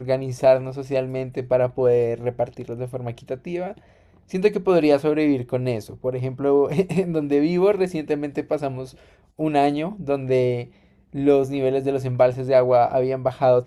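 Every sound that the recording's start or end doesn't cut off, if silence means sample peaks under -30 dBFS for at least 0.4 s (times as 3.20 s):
4.33–8.85 s
9.39–10.64 s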